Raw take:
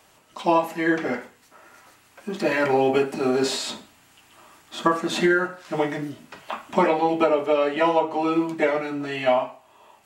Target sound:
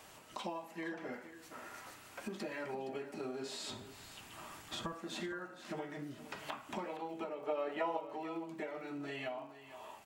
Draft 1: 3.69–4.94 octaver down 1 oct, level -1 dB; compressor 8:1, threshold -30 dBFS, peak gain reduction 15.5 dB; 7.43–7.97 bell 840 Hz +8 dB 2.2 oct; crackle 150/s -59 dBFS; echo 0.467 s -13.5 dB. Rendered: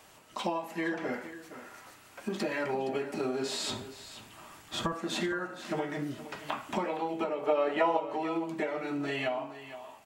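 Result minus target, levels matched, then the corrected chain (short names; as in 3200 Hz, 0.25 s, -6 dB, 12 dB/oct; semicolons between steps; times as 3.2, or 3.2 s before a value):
compressor: peak gain reduction -9.5 dB
3.69–4.94 octaver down 1 oct, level -1 dB; compressor 8:1, threshold -41 dBFS, peak gain reduction 25.5 dB; 7.43–7.97 bell 840 Hz +8 dB 2.2 oct; crackle 150/s -59 dBFS; echo 0.467 s -13.5 dB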